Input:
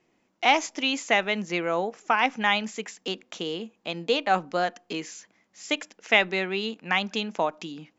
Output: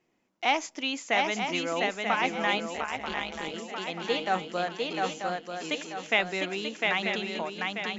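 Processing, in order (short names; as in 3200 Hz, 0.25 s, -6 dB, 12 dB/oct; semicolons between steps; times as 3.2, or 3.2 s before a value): ending faded out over 0.90 s; swung echo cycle 0.937 s, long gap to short 3:1, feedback 40%, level -3 dB; 2.75–3.54 AM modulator 150 Hz, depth 70%; gain -5 dB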